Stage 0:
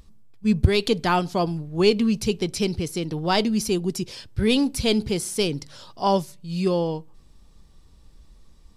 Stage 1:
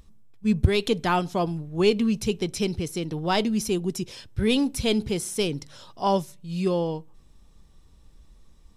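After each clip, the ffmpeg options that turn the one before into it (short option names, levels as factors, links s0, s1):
-af "bandreject=f=4600:w=7.7,volume=0.794"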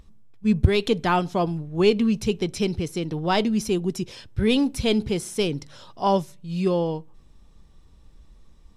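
-af "highshelf=f=6300:g=-7.5,volume=1.26"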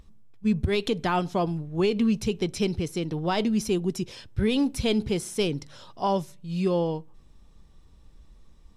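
-af "alimiter=limit=0.2:level=0:latency=1:release=88,volume=0.841"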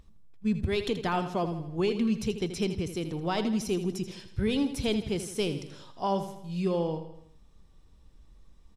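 -af "aecho=1:1:81|162|243|324|405:0.282|0.144|0.0733|0.0374|0.0191,volume=0.631"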